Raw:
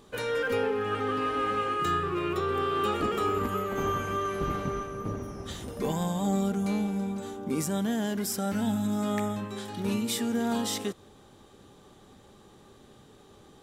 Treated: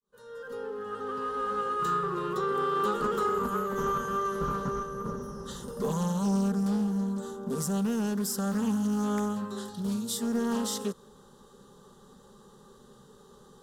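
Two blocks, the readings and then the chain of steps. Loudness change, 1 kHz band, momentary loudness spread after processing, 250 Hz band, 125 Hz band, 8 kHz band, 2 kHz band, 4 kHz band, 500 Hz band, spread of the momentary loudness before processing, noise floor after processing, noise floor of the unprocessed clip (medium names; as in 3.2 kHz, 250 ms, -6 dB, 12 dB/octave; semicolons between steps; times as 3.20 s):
-0.5 dB, -0.5 dB, 9 LU, 0.0 dB, -0.5 dB, 0.0 dB, -5.0 dB, -4.5 dB, -2.0 dB, 7 LU, -56 dBFS, -55 dBFS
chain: fade-in on the opening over 2.13 s; time-frequency box 9.69–10.22 s, 200–3200 Hz -6 dB; static phaser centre 460 Hz, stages 8; in parallel at -9.5 dB: saturation -32 dBFS, distortion -11 dB; on the sum: loudspeaker Doppler distortion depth 0.24 ms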